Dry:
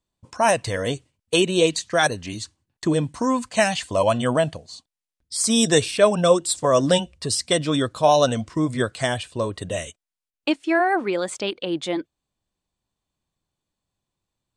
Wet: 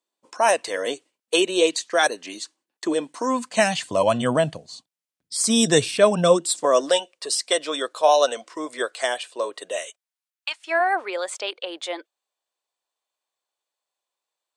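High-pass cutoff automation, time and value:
high-pass 24 dB/octave
3.23 s 310 Hz
3.77 s 120 Hz
6.25 s 120 Hz
6.91 s 410 Hz
9.76 s 410 Hz
10.49 s 1.1 kHz
10.76 s 490 Hz

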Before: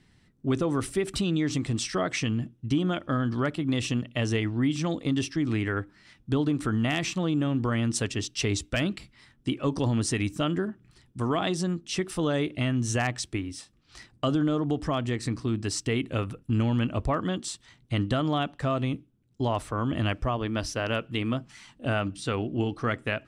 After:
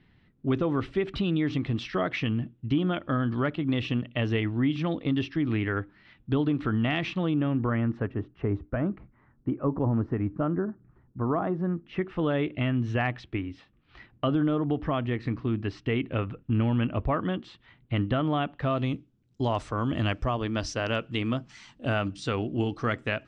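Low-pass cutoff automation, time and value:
low-pass 24 dB/octave
7.20 s 3.5 kHz
8.21 s 1.4 kHz
11.44 s 1.4 kHz
12.31 s 3 kHz
18.52 s 3 kHz
18.93 s 6.9 kHz

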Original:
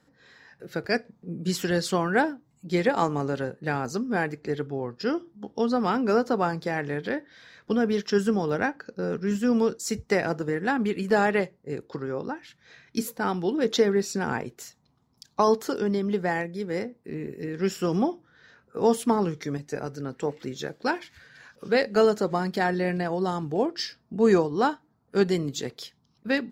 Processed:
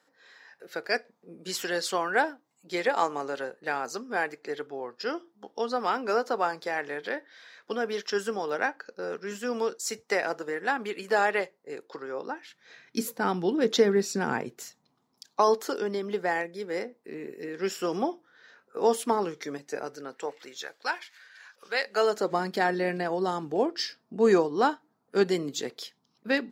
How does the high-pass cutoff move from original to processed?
12.08 s 500 Hz
13.28 s 160 Hz
14.55 s 160 Hz
15.40 s 370 Hz
19.83 s 370 Hz
20.69 s 930 Hz
21.83 s 930 Hz
22.34 s 260 Hz

